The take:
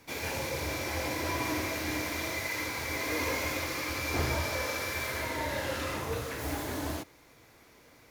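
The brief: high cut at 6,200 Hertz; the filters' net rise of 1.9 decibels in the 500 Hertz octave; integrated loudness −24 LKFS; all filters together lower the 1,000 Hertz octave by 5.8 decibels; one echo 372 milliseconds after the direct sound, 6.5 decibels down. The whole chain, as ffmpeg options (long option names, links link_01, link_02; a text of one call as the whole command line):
ffmpeg -i in.wav -af "lowpass=6200,equalizer=frequency=500:width_type=o:gain=4.5,equalizer=frequency=1000:width_type=o:gain=-8.5,aecho=1:1:372:0.473,volume=8.5dB" out.wav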